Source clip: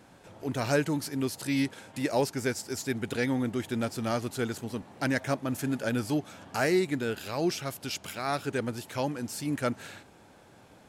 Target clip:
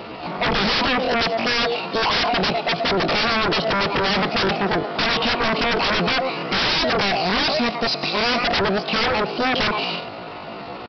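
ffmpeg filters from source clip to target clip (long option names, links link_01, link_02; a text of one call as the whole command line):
ffmpeg -i in.wav -filter_complex "[0:a]equalizer=frequency=400:width=7.1:gain=9,bandreject=frequency=920:width=6.8,asplit=2[link_01][link_02];[link_02]adelay=110,highpass=300,lowpass=3400,asoftclip=type=hard:threshold=-24.5dB,volume=-15dB[link_03];[link_01][link_03]amix=inputs=2:normalize=0,asetrate=76340,aresample=44100,atempo=0.577676,aresample=11025,aeval=exprs='0.168*sin(PI/2*8.91*val(0)/0.168)':channel_layout=same,aresample=44100,volume=-1dB" out.wav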